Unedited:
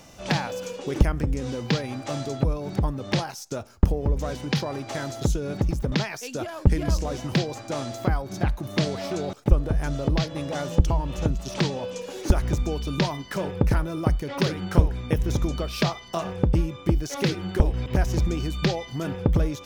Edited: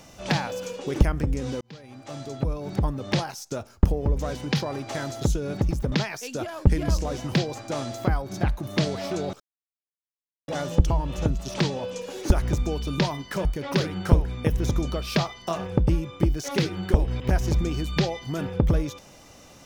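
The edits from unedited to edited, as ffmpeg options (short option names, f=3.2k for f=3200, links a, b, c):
-filter_complex "[0:a]asplit=5[a][b][c][d][e];[a]atrim=end=1.61,asetpts=PTS-STARTPTS,afade=t=out:st=1.606:d=0.004:c=hsin[f];[b]atrim=start=1.61:end=9.4,asetpts=PTS-STARTPTS,afade=t=in:d=1.23,afade=t=out:st=7.786:d=0.004:c=hsin[g];[c]atrim=start=9.4:end=10.48,asetpts=PTS-STARTPTS,volume=0[h];[d]atrim=start=10.48:end=13.452,asetpts=PTS-STARTPTS,afade=t=in:d=0.004:c=hsin[i];[e]atrim=start=14.108[j];[f][g][h][i]concat=n=4:v=0:a=1[k];[k][j]acrossfade=d=0.004:c1=hsin:c2=hsin"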